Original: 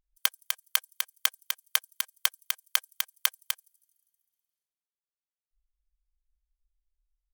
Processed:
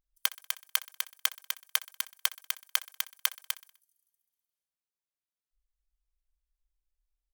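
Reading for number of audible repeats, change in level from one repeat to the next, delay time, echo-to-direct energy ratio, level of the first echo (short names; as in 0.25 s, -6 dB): 3, -5.5 dB, 63 ms, -18.0 dB, -19.5 dB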